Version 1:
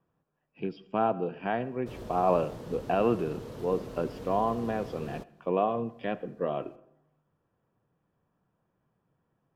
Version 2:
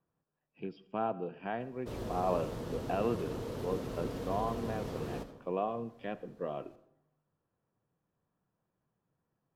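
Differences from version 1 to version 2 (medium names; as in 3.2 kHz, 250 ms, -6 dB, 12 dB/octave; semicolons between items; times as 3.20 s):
speech -7.0 dB; background: send on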